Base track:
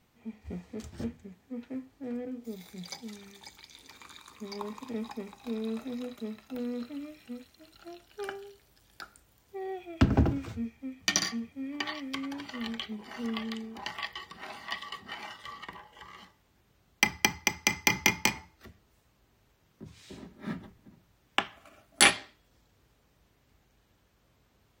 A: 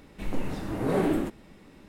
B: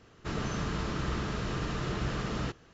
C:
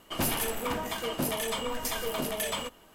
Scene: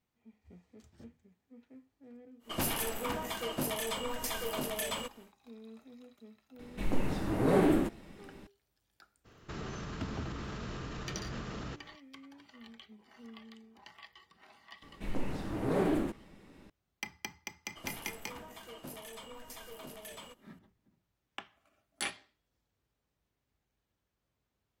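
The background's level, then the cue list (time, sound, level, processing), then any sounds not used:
base track −16.5 dB
0:02.39: mix in C −4 dB, fades 0.10 s
0:06.59: mix in A −0.5 dB
0:09.24: mix in B −1.5 dB, fades 0.02 s + brickwall limiter −31.5 dBFS
0:14.82: mix in A −4.5 dB + highs frequency-modulated by the lows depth 0.19 ms
0:17.65: mix in C −16 dB

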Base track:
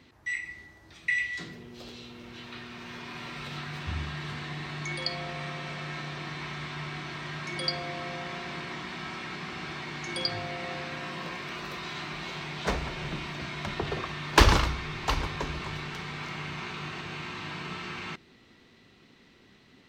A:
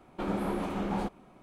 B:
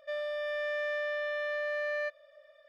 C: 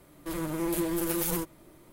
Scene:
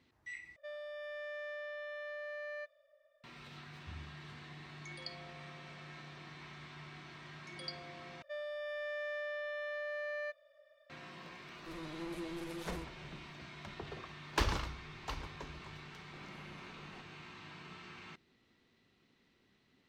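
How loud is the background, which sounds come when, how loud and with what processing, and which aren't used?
base track −14 dB
0:00.56: overwrite with B −10.5 dB + one half of a high-frequency compander decoder only
0:08.22: overwrite with B −7 dB
0:11.40: mix in C −13.5 dB + low-pass filter 5,500 Hz
0:15.94: mix in A −13.5 dB + downward compressor 3 to 1, threshold −44 dBFS

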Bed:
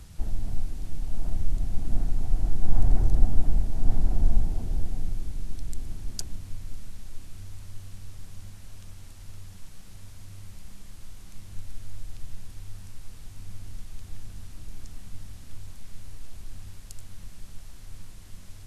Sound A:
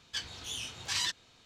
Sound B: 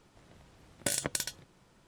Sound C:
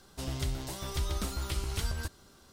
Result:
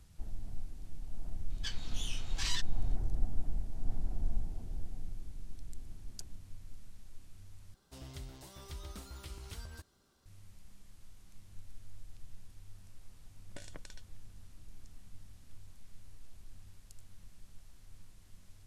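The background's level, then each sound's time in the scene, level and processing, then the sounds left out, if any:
bed −12.5 dB
0:01.50: mix in A −5 dB
0:07.74: overwrite with C −13 dB
0:12.70: mix in B −16.5 dB + high-frequency loss of the air 82 metres

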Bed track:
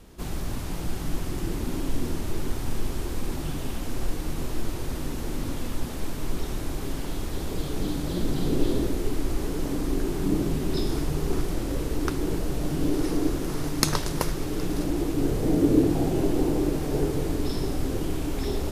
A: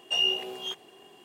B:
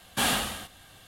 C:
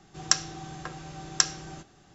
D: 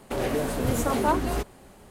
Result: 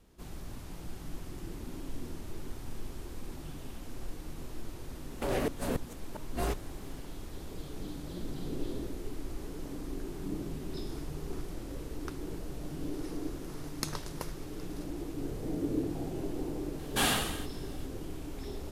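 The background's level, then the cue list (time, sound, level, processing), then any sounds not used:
bed track −12.5 dB
0:05.11: mix in D −4 dB + gate with flip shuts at −15 dBFS, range −37 dB
0:16.79: mix in B −3 dB
not used: A, C

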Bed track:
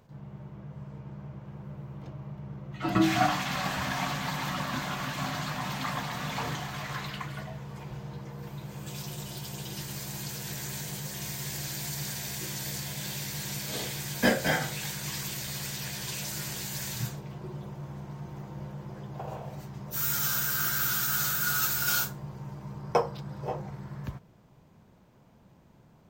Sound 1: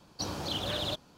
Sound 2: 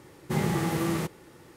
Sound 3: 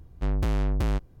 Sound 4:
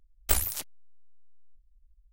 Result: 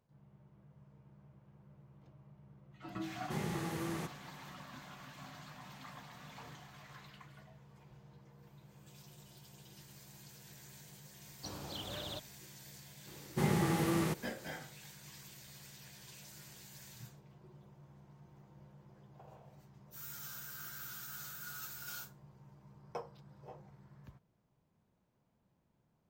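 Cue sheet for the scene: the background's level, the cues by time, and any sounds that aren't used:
bed track −18.5 dB
0:03.00: mix in 2 −11.5 dB + parametric band 6,300 Hz +3 dB 0.23 octaves
0:11.24: mix in 1 −10 dB + high-shelf EQ 9,900 Hz −9 dB
0:13.07: mix in 2 −4.5 dB
not used: 3, 4

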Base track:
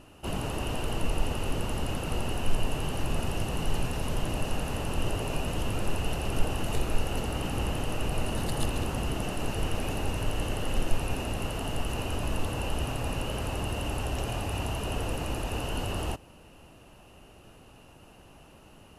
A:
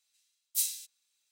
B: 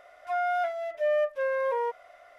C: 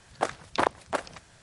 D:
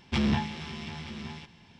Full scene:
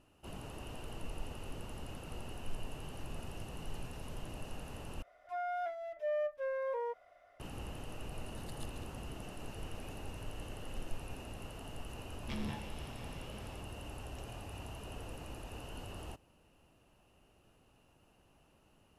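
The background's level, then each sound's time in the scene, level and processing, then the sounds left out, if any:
base track −14.5 dB
0:05.02: overwrite with B −13 dB + low-shelf EQ 400 Hz +12 dB
0:12.16: mix in D −15 dB
not used: A, C

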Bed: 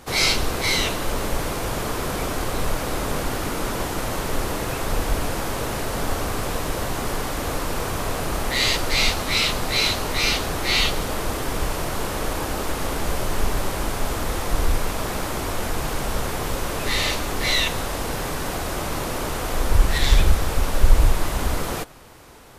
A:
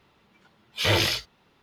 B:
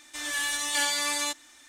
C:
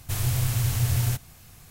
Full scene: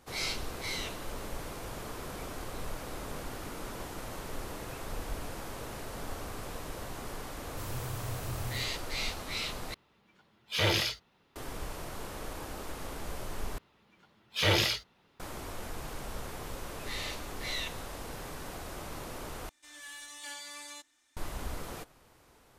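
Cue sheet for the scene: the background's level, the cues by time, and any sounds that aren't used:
bed −15 dB
0:07.48: mix in C −15 dB
0:09.74: overwrite with A −5.5 dB
0:13.58: overwrite with A −4 dB + pitch vibrato 4.1 Hz 53 cents
0:19.49: overwrite with B −17 dB

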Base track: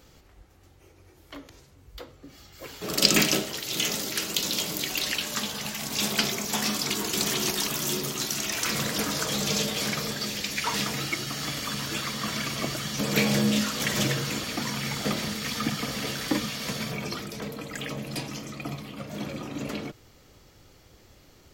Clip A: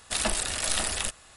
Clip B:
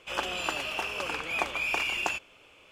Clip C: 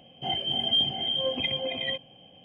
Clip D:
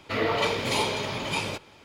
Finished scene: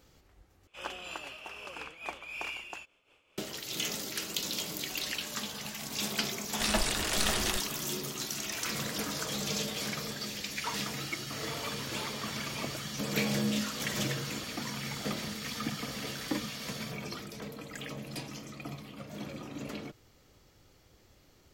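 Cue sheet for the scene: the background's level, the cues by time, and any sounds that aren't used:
base track −7 dB
0:00.67: overwrite with B −7.5 dB + amplitude modulation by smooth noise
0:06.49: mix in A −0.5 dB + high-frequency loss of the air 59 metres
0:11.22: mix in D −15.5 dB
not used: C

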